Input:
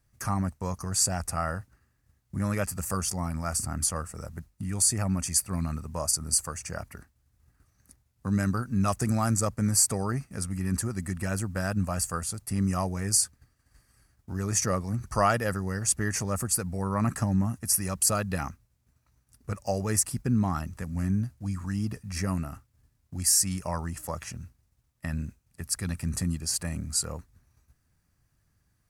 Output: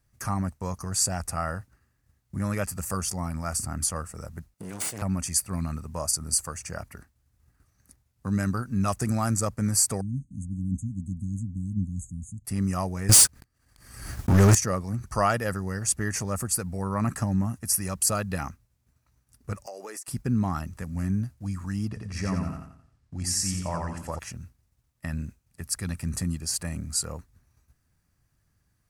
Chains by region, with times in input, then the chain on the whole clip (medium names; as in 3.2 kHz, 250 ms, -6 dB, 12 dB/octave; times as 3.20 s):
4.54–5.02 s: comb filter that takes the minimum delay 1.4 ms + high-pass 160 Hz + compression 2:1, threshold -31 dBFS
10.01–12.45 s: brick-wall FIR band-stop 300–6200 Hz + distance through air 120 m
13.09–14.55 s: waveshaping leveller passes 5 + swell ahead of each attack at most 72 dB/s
19.66–20.08 s: high-pass 340 Hz 24 dB/octave + compression 10:1, threshold -35 dBFS
21.88–24.19 s: distance through air 61 m + feedback delay 88 ms, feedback 39%, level -3.5 dB
whole clip: none